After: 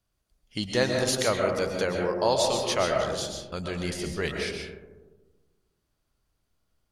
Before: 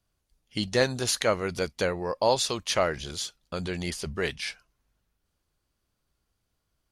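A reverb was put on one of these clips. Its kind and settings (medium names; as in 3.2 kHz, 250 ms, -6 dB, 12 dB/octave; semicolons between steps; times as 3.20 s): algorithmic reverb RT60 1.3 s, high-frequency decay 0.25×, pre-delay 90 ms, DRR 1.5 dB; trim -1.5 dB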